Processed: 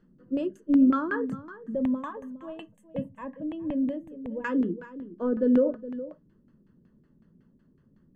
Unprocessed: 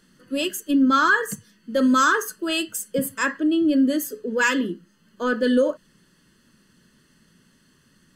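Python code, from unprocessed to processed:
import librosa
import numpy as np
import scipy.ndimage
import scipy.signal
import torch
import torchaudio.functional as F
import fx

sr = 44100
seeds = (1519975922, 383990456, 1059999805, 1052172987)

y = fx.peak_eq(x, sr, hz=1800.0, db=-12.0, octaves=2.9)
y = fx.notch(y, sr, hz=3900.0, q=15.0)
y = y + 10.0 ** (-14.5 / 20.0) * np.pad(y, (int(415 * sr / 1000.0), 0))[:len(y)]
y = fx.filter_lfo_lowpass(y, sr, shape='saw_down', hz=5.4, low_hz=360.0, high_hz=1900.0, q=0.99)
y = fx.fixed_phaser(y, sr, hz=1400.0, stages=6, at=(1.75, 4.44))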